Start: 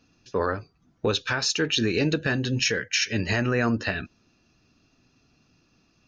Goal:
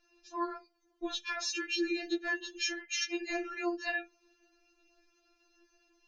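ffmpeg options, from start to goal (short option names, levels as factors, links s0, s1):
-filter_complex "[0:a]asplit=2[s0][s1];[s1]acompressor=threshold=0.0224:ratio=6,volume=1.19[s2];[s0][s2]amix=inputs=2:normalize=0,afftfilt=real='re*4*eq(mod(b,16),0)':imag='im*4*eq(mod(b,16),0)':win_size=2048:overlap=0.75,volume=0.355"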